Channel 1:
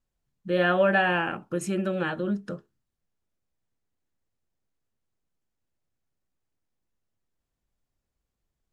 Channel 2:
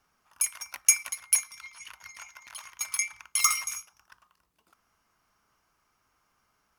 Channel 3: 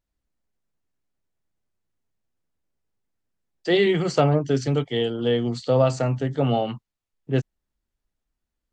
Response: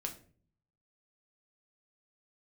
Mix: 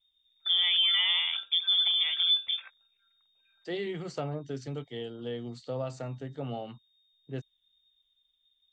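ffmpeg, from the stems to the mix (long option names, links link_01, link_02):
-filter_complex "[0:a]tiltshelf=frequency=800:gain=7.5,volume=1.5dB,asplit=2[link_01][link_02];[1:a]acompressor=threshold=-33dB:ratio=2,volume=32dB,asoftclip=hard,volume=-32dB,asplit=2[link_03][link_04];[link_04]afreqshift=2.2[link_05];[link_03][link_05]amix=inputs=2:normalize=1,volume=1.5dB[link_06];[2:a]volume=-14dB[link_07];[link_02]apad=whole_len=299041[link_08];[link_06][link_08]sidechaingate=range=-33dB:threshold=-42dB:ratio=16:detection=peak[link_09];[link_01][link_09]amix=inputs=2:normalize=0,lowpass=frequency=3100:width_type=q:width=0.5098,lowpass=frequency=3100:width_type=q:width=0.6013,lowpass=frequency=3100:width_type=q:width=0.9,lowpass=frequency=3100:width_type=q:width=2.563,afreqshift=-3700,alimiter=limit=-11.5dB:level=0:latency=1,volume=0dB[link_10];[link_07][link_10]amix=inputs=2:normalize=0,acompressor=threshold=-32dB:ratio=1.5"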